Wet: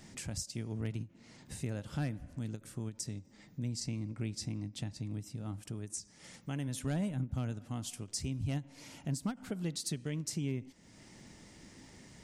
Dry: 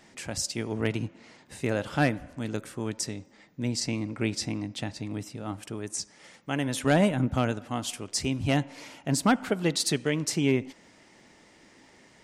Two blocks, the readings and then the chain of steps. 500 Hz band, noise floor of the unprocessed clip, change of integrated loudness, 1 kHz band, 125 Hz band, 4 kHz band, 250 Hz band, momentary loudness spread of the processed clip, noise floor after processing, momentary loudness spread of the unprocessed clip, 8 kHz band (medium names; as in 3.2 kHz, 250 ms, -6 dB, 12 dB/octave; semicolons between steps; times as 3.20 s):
-16.0 dB, -57 dBFS, -10.0 dB, -18.0 dB, -5.0 dB, -11.5 dB, -10.5 dB, 18 LU, -60 dBFS, 12 LU, -8.5 dB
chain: tone controls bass +14 dB, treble +8 dB; compression 2:1, threshold -41 dBFS, peak gain reduction 16 dB; endings held to a fixed fall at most 300 dB/s; trim -4 dB